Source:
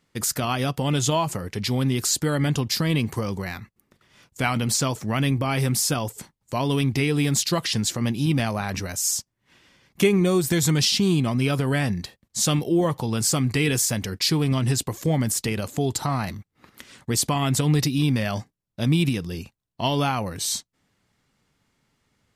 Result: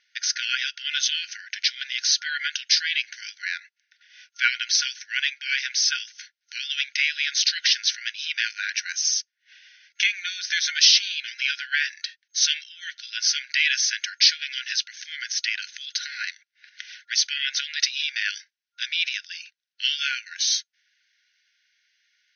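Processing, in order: FFT band-pass 1400–6400 Hz; gain +7 dB

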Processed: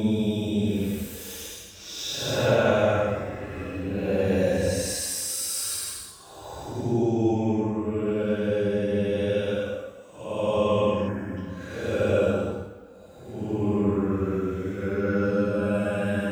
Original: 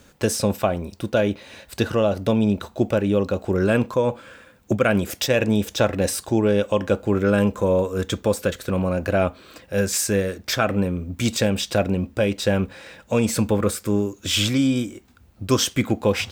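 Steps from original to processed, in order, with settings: Paulstretch 8.7×, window 0.10 s, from 5.52; spectral gain 11.08–11.37, 2600–6100 Hz -14 dB; vocal rider within 5 dB 2 s; gain -6 dB

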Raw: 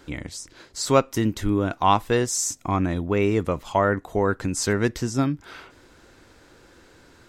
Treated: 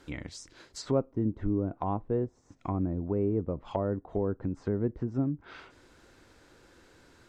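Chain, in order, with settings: treble ducked by the level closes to 510 Hz, closed at -20.5 dBFS; gain -6 dB

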